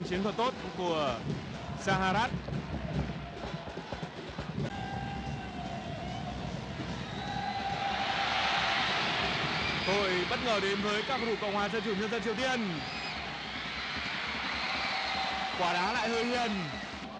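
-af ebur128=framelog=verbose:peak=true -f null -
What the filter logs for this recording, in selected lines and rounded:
Integrated loudness:
  I:         -32.4 LUFS
  Threshold: -42.3 LUFS
Loudness range:
  LRA:         8.7 LU
  Threshold: -52.4 LUFS
  LRA low:   -38.1 LUFS
  LRA high:  -29.4 LUFS
True peak:
  Peak:      -15.6 dBFS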